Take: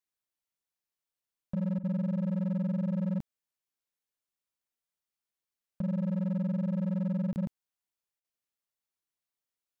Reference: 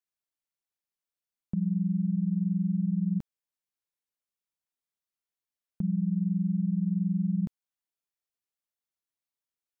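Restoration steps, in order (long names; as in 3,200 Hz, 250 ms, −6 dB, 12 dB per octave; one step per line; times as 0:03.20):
clipped peaks rebuilt −27.5 dBFS
repair the gap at 0:07.33, 29 ms
repair the gap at 0:01.79/0:08.20, 42 ms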